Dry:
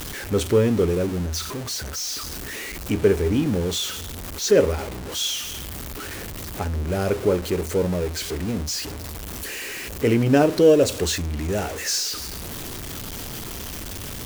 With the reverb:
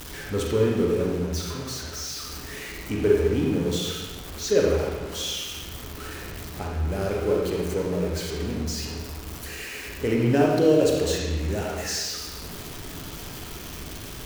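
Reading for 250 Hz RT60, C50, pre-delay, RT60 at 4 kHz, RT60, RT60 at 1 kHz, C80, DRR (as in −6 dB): 1.4 s, 0.0 dB, 34 ms, 1.1 s, 1.4 s, 1.3 s, 3.0 dB, −1.5 dB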